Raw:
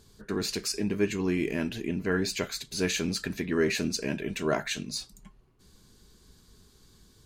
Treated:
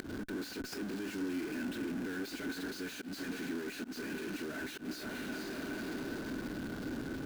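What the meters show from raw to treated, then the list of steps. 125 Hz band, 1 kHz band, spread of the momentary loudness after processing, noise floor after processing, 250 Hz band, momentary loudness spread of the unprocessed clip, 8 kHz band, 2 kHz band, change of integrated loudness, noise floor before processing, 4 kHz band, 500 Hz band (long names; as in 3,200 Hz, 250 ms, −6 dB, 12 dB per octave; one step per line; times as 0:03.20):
−12.0 dB, −7.0 dB, 3 LU, −46 dBFS, −6.0 dB, 6 LU, −14.0 dB, −6.0 dB, −10.0 dB, −60 dBFS, −11.5 dB, −11.5 dB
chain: meter weighting curve D
on a send: feedback delay with all-pass diffusion 490 ms, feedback 44%, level −12.5 dB
on the sum: upward compression, threshold −30 dBFS
comparator with hysteresis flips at −37 dBFS
hollow resonant body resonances 280/1,500 Hz, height 17 dB, ringing for 35 ms
gate with flip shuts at −21 dBFS, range −37 dB
volume swells 119 ms
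level +18 dB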